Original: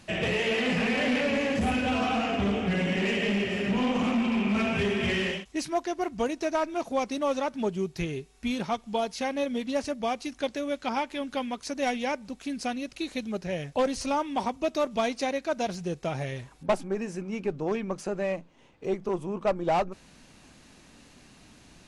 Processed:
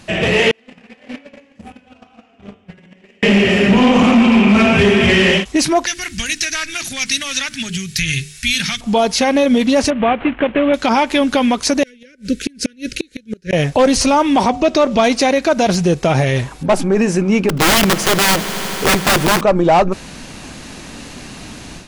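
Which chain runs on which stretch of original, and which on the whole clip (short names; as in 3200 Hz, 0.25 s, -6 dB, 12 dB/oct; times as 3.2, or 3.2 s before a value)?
0.51–3.23 gate -22 dBFS, range -45 dB + de-hum 91.7 Hz, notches 40
5.86–8.81 notches 50/100/150/200/250/300/350/400/450 Hz + compressor 4:1, threshold -31 dBFS + EQ curve 130 Hz 0 dB, 430 Hz -26 dB, 990 Hz -20 dB, 1700 Hz +4 dB, 8000 Hz +9 dB
9.9–10.74 CVSD 16 kbps + compressor 3:1, threshold -31 dBFS
11.83–13.53 elliptic band-stop 500–1500 Hz, stop band 50 dB + flipped gate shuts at -25 dBFS, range -33 dB
14.48–15.04 LPF 6600 Hz + de-hum 183.5 Hz, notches 4
17.49–19.41 wrapped overs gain 27.5 dB + swelling echo 80 ms, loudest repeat 5, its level -18 dB
whole clip: AGC gain up to 10.5 dB; maximiser +15 dB; gain -4.5 dB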